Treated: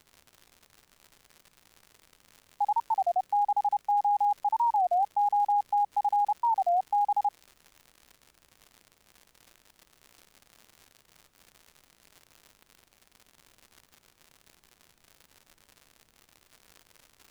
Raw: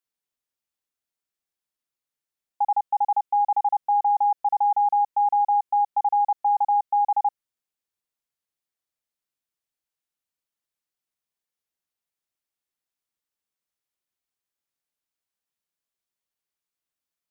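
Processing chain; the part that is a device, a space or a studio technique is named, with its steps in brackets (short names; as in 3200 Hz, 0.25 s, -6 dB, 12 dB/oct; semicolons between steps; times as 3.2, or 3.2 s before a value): warped LP (record warp 33 1/3 rpm, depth 250 cents; crackle 140/s -35 dBFS; pink noise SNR 38 dB); gain -4.5 dB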